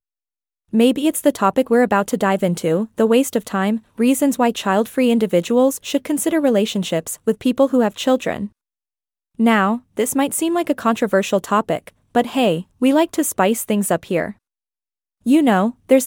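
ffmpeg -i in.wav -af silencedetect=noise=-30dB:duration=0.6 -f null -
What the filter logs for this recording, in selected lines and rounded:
silence_start: 0.00
silence_end: 0.73 | silence_duration: 0.73
silence_start: 8.47
silence_end: 9.39 | silence_duration: 0.93
silence_start: 14.31
silence_end: 15.26 | silence_duration: 0.95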